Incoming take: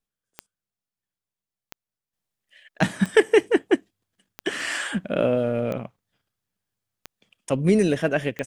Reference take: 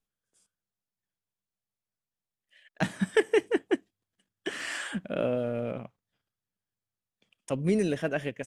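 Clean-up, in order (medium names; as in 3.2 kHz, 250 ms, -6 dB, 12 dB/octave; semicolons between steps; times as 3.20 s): de-click; trim 0 dB, from 2.13 s -7 dB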